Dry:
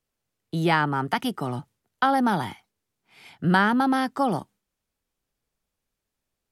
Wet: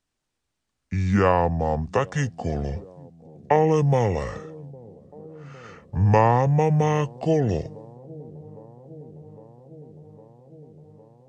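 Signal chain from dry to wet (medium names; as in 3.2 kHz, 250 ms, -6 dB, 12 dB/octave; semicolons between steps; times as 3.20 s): on a send: feedback echo behind a band-pass 466 ms, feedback 77%, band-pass 450 Hz, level -20 dB; on the sum: speed mistake 78 rpm record played at 45 rpm; trim +2 dB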